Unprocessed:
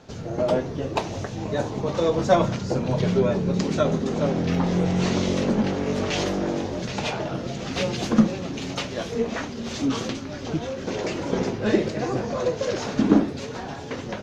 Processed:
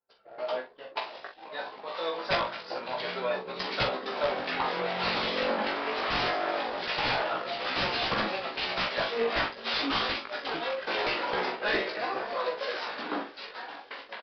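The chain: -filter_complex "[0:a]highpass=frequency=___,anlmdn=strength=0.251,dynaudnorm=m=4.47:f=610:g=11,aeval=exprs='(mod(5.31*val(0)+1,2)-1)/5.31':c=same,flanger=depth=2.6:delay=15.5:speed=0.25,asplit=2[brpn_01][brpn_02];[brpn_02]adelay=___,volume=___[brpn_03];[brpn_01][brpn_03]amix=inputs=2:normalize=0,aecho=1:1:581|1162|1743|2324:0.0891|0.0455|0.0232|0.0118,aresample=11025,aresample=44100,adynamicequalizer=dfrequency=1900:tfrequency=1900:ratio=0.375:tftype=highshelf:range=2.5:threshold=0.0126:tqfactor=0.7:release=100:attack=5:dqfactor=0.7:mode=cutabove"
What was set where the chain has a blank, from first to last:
1000, 43, 0.447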